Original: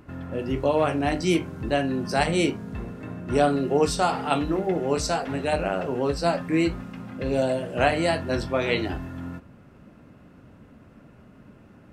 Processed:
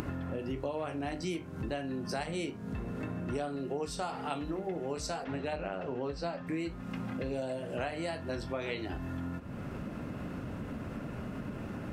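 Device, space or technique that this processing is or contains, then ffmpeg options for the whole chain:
upward and downward compression: -filter_complex "[0:a]asettb=1/sr,asplit=3[s0][s1][s2];[s0]atrim=end=5.244[s3];[s1]atrim=start=5.24:end=6.47,asetpts=PTS-STARTPTS,afade=t=in:d=0.004:c=qsin,afade=t=out:st=1.226:d=0.004:c=qsin,lowpass=5100[s4];[s2]atrim=start=6.466[s5];[s3][s4]acrossfade=d=0.004:c1=hsin:c2=qsin[s6];[s6][s5]acrossfade=d=0.004:c1=qsin:c2=hsin,acompressor=mode=upward:threshold=0.0447:ratio=2.5,acompressor=threshold=0.02:ratio=5"

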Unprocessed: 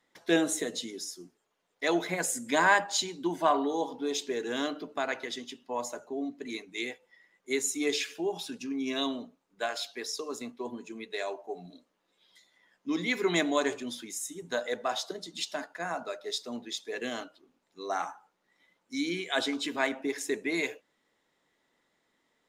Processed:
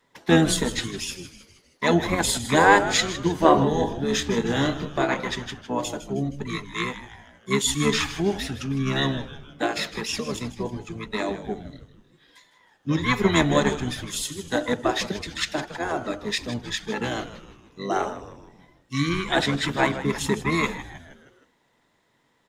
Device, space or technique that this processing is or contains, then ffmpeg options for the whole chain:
octave pedal: -filter_complex "[0:a]equalizer=f=140:w=3.6:g=-5,asettb=1/sr,asplit=3[s0][s1][s2];[s0]atrim=end=3.404[s3];[s1]atrim=start=3.4:end=5.28,asetpts=PTS-STARTPTS,afade=t=in:d=0.004:c=qsin,afade=t=out:st=1.876:d=0.004:c=qsin,asplit=2[s4][s5];[s5]adelay=26,volume=0.531[s6];[s4][s6]amix=inputs=2:normalize=0,atrim=end_sample=82908[s7];[s2]atrim=start=5.276[s8];[s3][s7]acrossfade=d=0.004:c1=hsin:c2=qsin[s9];[s9][s8]acrossfade=d=0.004:c1=qsin:c2=hsin,asplit=2[s10][s11];[s11]asetrate=22050,aresample=44100,atempo=2,volume=0.891[s12];[s10][s12]amix=inputs=2:normalize=0,asplit=6[s13][s14][s15][s16][s17][s18];[s14]adelay=157,afreqshift=-140,volume=0.224[s19];[s15]adelay=314,afreqshift=-280,volume=0.112[s20];[s16]adelay=471,afreqshift=-420,volume=0.0562[s21];[s17]adelay=628,afreqshift=-560,volume=0.0279[s22];[s18]adelay=785,afreqshift=-700,volume=0.014[s23];[s13][s19][s20][s21][s22][s23]amix=inputs=6:normalize=0,volume=1.78"

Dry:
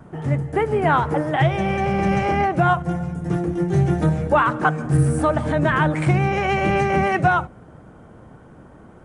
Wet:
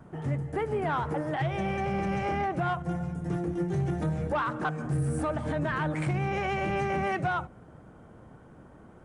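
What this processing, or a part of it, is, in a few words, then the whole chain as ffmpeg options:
soft clipper into limiter: -af "asoftclip=type=tanh:threshold=0.316,alimiter=limit=0.168:level=0:latency=1:release=163,volume=0.473"

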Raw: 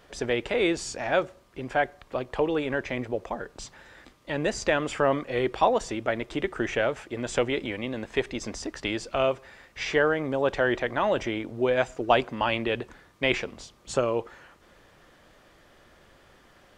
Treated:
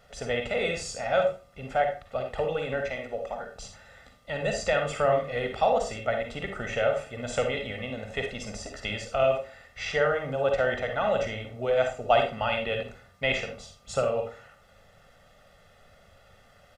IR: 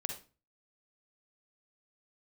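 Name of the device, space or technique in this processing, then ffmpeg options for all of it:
microphone above a desk: -filter_complex "[0:a]asettb=1/sr,asplit=3[s0][s1][s2];[s0]atrim=end=2.904[s3];[s1]atrim=start=2.9:end=3.52,asetpts=PTS-STARTPTS,afade=t=in:d=0.004:c=qsin,afade=t=out:st=0.616:d=0.004:c=qsin,equalizer=f=99:t=o:w=2.3:g=-9.5[s4];[s2]atrim=start=3.516[s5];[s3][s4]acrossfade=d=0.004:c1=hsin:c2=qsin[s6];[s6][s5]acrossfade=d=0.004:c1=qsin:c2=hsin,aecho=1:1:1.5:0.87[s7];[1:a]atrim=start_sample=2205[s8];[s7][s8]afir=irnorm=-1:irlink=0,volume=0.631"

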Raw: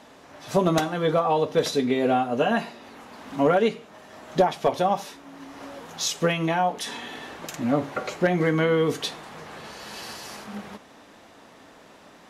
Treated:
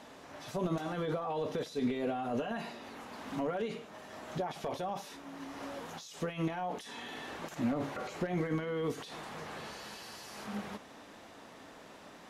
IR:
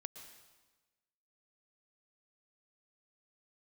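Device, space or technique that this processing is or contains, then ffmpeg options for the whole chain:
de-esser from a sidechain: -filter_complex "[0:a]asplit=2[s0][s1];[s1]highpass=f=5700:p=1,apad=whole_len=542103[s2];[s0][s2]sidechaincompress=threshold=0.00501:ratio=20:attack=0.82:release=26,volume=0.75"

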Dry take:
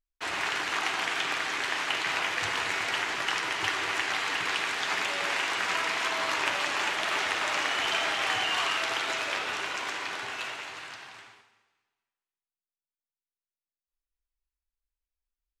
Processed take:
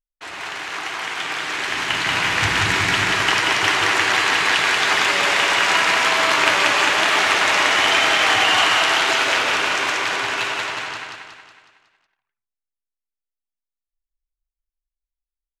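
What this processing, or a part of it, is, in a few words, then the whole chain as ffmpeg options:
voice memo with heavy noise removal: -filter_complex "[0:a]asplit=3[s0][s1][s2];[s0]afade=t=out:st=1.68:d=0.02[s3];[s1]asubboost=boost=5.5:cutoff=240,afade=t=in:st=1.68:d=0.02,afade=t=out:st=3.12:d=0.02[s4];[s2]afade=t=in:st=3.12:d=0.02[s5];[s3][s4][s5]amix=inputs=3:normalize=0,anlmdn=0.158,dynaudnorm=f=280:g=13:m=4.22,aecho=1:1:184|368|552|736|920|1104:0.668|0.327|0.16|0.0786|0.0385|0.0189,volume=0.891"

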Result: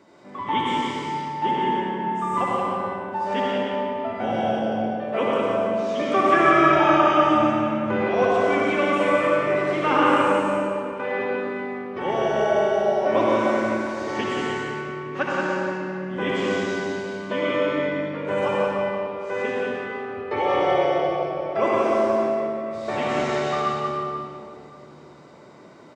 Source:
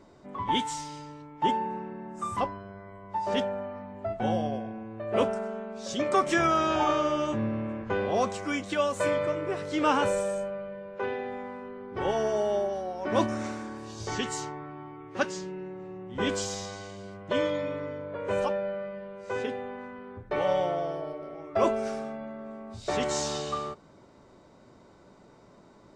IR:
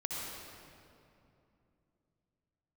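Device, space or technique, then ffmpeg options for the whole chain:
PA in a hall: -filter_complex "[0:a]acrossover=split=2800[s0][s1];[s1]acompressor=threshold=0.00224:ratio=4:attack=1:release=60[s2];[s0][s2]amix=inputs=2:normalize=0,asettb=1/sr,asplit=3[s3][s4][s5];[s3]atrim=end=19.644[s6];[s4]atrim=start=19.64:end=20.91,asetpts=PTS-STARTPTS,afade=t=in:d=0.004:c=qsin,afade=t=out:st=1.266:d=0.004:c=qsin,aecho=1:1:2.4:0.85,atrim=end_sample=56007[s7];[s5]atrim=start=20.906[s8];[s6][s7]acrossfade=d=0.004:c1=hsin:c2=qsin[s9];[s9][s8]acrossfade=d=0.004:c1=qsin:c2=hsin,highpass=150,equalizer=f=2300:t=o:w=1.5:g=5,aecho=1:1:178:0.596[s10];[1:a]atrim=start_sample=2205[s11];[s10][s11]afir=irnorm=-1:irlink=0,volume=1.41"

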